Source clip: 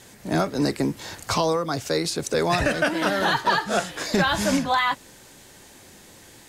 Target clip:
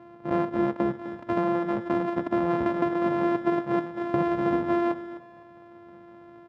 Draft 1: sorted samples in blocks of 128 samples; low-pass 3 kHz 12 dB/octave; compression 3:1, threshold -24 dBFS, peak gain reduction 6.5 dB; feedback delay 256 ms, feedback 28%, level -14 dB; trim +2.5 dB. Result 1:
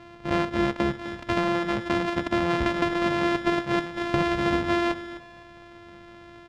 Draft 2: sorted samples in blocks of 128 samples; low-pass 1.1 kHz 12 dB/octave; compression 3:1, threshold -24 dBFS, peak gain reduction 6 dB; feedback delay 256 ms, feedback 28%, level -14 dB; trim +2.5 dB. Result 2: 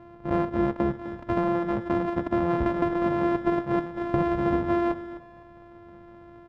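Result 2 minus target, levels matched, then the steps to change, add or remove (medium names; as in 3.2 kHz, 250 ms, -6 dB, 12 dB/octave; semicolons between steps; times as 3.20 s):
125 Hz band +3.5 dB
add after compression: high-pass 150 Hz 12 dB/octave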